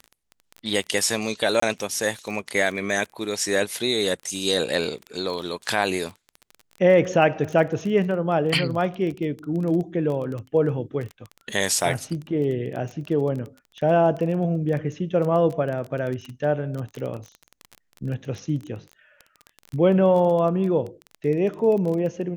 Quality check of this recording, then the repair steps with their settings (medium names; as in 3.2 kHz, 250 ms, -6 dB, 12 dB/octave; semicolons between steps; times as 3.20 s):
crackle 20 per s -29 dBFS
1.60–1.62 s: dropout 24 ms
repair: de-click; interpolate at 1.60 s, 24 ms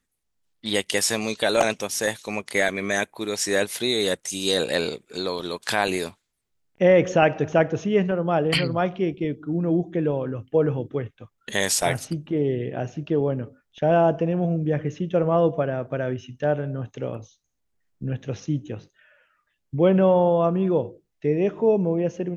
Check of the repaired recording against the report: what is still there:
nothing left